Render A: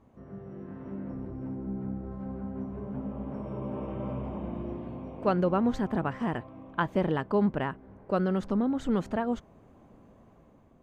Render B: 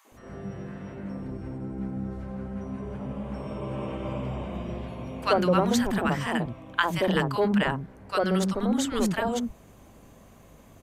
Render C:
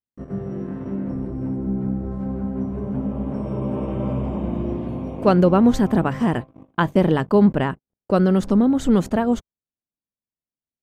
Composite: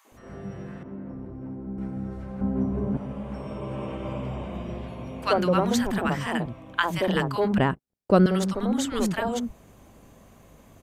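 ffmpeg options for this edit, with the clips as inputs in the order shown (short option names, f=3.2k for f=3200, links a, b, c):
-filter_complex "[2:a]asplit=2[a][b];[1:a]asplit=4[c][d][e][f];[c]atrim=end=0.832[g];[0:a]atrim=start=0.828:end=1.782[h];[d]atrim=start=1.778:end=2.412[i];[a]atrim=start=2.408:end=2.972[j];[e]atrim=start=2.968:end=7.582[k];[b]atrim=start=7.578:end=8.262[l];[f]atrim=start=8.258[m];[g][h]acrossfade=d=0.004:c1=hsin:c2=hsin[n];[n][i]acrossfade=d=0.004:c1=hsin:c2=hsin[o];[o][j]acrossfade=d=0.004:c1=hsin:c2=hsin[p];[p][k]acrossfade=d=0.004:c1=hsin:c2=hsin[q];[q][l]acrossfade=d=0.004:c1=hsin:c2=hsin[r];[r][m]acrossfade=d=0.004:c1=hsin:c2=hsin"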